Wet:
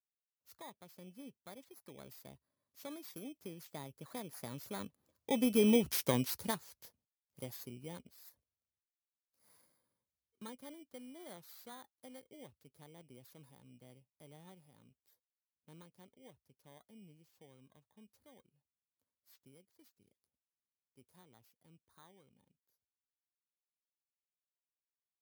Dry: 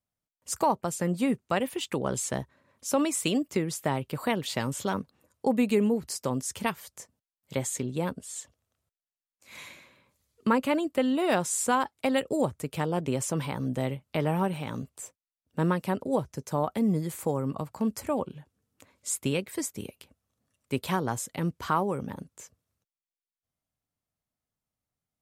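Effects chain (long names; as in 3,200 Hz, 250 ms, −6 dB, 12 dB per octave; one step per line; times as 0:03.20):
samples in bit-reversed order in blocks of 16 samples
source passing by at 0:05.93, 10 m/s, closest 2.6 metres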